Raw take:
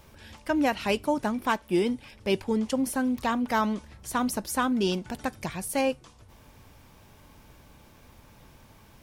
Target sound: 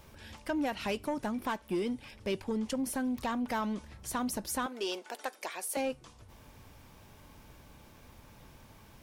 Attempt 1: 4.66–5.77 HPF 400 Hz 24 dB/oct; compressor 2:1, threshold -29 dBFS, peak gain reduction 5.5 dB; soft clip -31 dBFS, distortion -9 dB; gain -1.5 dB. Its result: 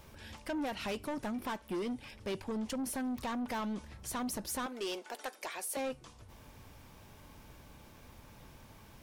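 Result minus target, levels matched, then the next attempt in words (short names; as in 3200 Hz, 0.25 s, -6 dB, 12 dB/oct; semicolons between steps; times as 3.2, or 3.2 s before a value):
soft clip: distortion +8 dB
4.66–5.77 HPF 400 Hz 24 dB/oct; compressor 2:1, threshold -29 dBFS, peak gain reduction 5.5 dB; soft clip -23 dBFS, distortion -17 dB; gain -1.5 dB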